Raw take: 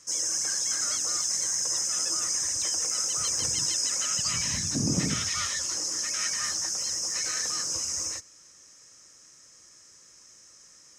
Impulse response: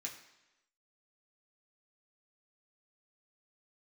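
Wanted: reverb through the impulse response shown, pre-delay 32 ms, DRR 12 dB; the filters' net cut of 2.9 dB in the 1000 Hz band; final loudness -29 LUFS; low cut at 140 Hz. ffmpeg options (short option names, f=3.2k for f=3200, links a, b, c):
-filter_complex "[0:a]highpass=140,equalizer=f=1k:t=o:g=-4,asplit=2[a][b];[1:a]atrim=start_sample=2205,adelay=32[c];[b][c]afir=irnorm=-1:irlink=0,volume=-10dB[d];[a][d]amix=inputs=2:normalize=0,volume=-3.5dB"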